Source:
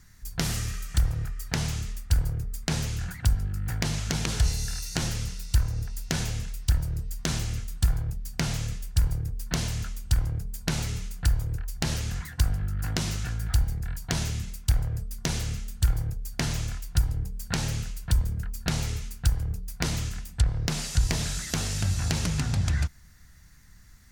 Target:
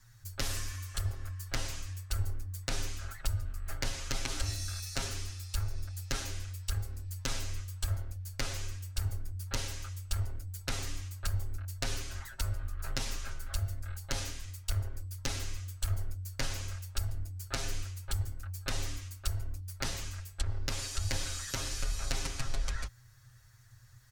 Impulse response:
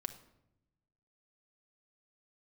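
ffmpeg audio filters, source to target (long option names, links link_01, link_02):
-af "afreqshift=-130,aecho=1:1:7.4:0.97,volume=-8dB"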